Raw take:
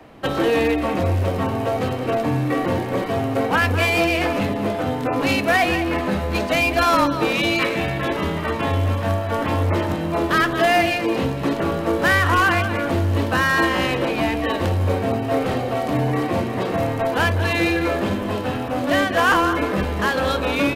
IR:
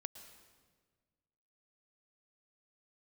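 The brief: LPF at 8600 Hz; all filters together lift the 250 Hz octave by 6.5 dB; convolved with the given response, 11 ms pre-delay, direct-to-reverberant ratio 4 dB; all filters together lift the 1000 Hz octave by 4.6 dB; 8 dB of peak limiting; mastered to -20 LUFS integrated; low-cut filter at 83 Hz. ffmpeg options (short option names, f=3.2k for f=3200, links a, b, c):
-filter_complex "[0:a]highpass=83,lowpass=8.6k,equalizer=f=250:t=o:g=8,equalizer=f=1k:t=o:g=5.5,alimiter=limit=-10.5dB:level=0:latency=1,asplit=2[a][b];[1:a]atrim=start_sample=2205,adelay=11[c];[b][c]afir=irnorm=-1:irlink=0,volume=-0.5dB[d];[a][d]amix=inputs=2:normalize=0,volume=-2.5dB"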